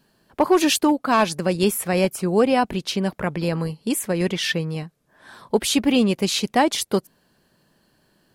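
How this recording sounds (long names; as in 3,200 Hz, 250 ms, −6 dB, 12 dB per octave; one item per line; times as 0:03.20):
background noise floor −65 dBFS
spectral slope −4.5 dB per octave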